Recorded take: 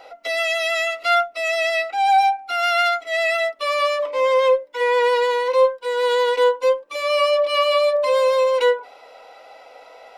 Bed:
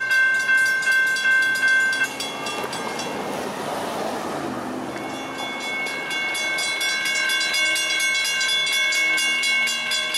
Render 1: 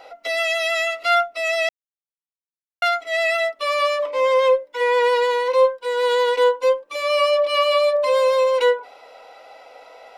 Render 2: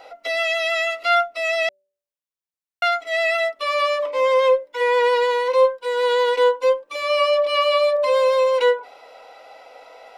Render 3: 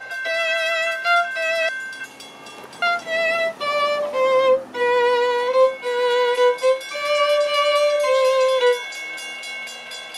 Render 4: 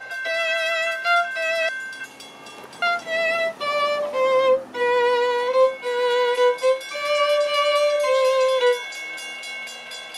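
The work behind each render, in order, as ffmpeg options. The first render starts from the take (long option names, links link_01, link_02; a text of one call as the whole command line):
ffmpeg -i in.wav -filter_complex "[0:a]asplit=3[link_01][link_02][link_03];[link_01]atrim=end=1.69,asetpts=PTS-STARTPTS,afade=type=out:start_time=1.686:duration=0.004:curve=hsin[link_04];[link_02]atrim=start=1.69:end=2.82,asetpts=PTS-STARTPTS,volume=0[link_05];[link_03]atrim=start=2.82,asetpts=PTS-STARTPTS,afade=type=in:duration=0.004:curve=hsin[link_06];[link_04][link_05][link_06]concat=n=3:v=0:a=1" out.wav
ffmpeg -i in.wav -filter_complex "[0:a]bandreject=frequency=193.3:width_type=h:width=4,bandreject=frequency=386.6:width_type=h:width=4,bandreject=frequency=579.9:width_type=h:width=4,acrossover=split=5700[link_01][link_02];[link_02]acompressor=threshold=-46dB:ratio=4:attack=1:release=60[link_03];[link_01][link_03]amix=inputs=2:normalize=0" out.wav
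ffmpeg -i in.wav -i bed.wav -filter_complex "[1:a]volume=-11dB[link_01];[0:a][link_01]amix=inputs=2:normalize=0" out.wav
ffmpeg -i in.wav -af "volume=-1.5dB" out.wav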